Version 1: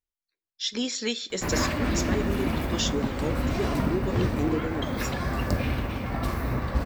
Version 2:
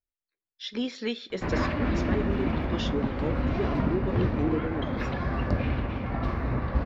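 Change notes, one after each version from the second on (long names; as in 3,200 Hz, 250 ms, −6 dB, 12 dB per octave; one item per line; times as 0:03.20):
master: add high-frequency loss of the air 270 metres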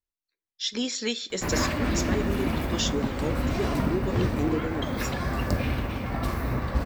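master: remove high-frequency loss of the air 270 metres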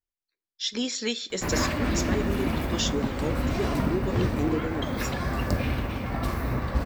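nothing changed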